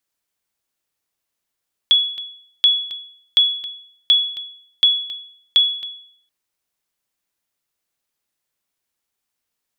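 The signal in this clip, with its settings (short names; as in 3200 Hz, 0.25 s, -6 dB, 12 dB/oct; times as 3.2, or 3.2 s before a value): sonar ping 3380 Hz, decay 0.62 s, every 0.73 s, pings 6, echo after 0.27 s, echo -15 dB -6.5 dBFS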